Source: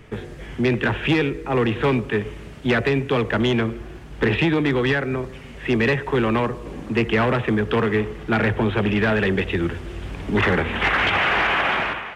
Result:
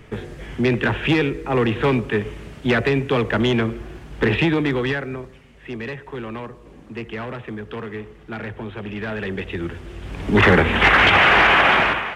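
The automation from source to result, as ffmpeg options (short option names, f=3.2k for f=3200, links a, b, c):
-af "volume=18dB,afade=t=out:st=4.45:d=1.01:silence=0.251189,afade=t=in:st=8.81:d=1.22:silence=0.375837,afade=t=in:st=10.03:d=0.45:silence=0.375837"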